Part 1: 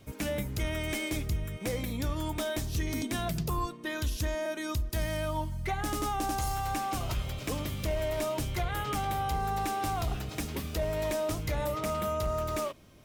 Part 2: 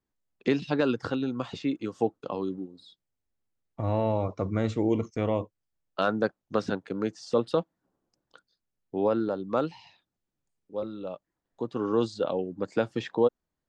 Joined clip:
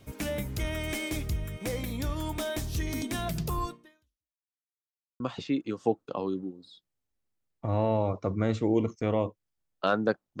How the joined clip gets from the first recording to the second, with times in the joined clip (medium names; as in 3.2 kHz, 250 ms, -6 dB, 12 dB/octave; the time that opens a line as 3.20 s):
part 1
3.71–4.47 s: fade out exponential
4.47–5.20 s: mute
5.20 s: go over to part 2 from 1.35 s